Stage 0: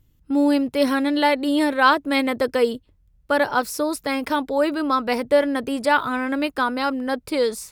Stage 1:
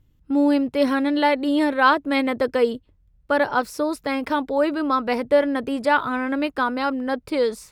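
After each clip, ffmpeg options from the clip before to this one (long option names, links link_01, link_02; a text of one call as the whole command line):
ffmpeg -i in.wav -af "highshelf=frequency=5200:gain=-10.5" out.wav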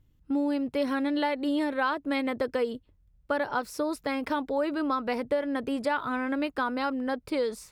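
ffmpeg -i in.wav -af "acompressor=threshold=-20dB:ratio=5,volume=-4dB" out.wav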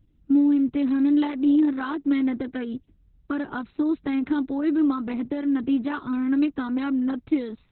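ffmpeg -i in.wav -af "lowshelf=frequency=410:width_type=q:width=3:gain=7.5,volume=-3.5dB" -ar 48000 -c:a libopus -b:a 6k out.opus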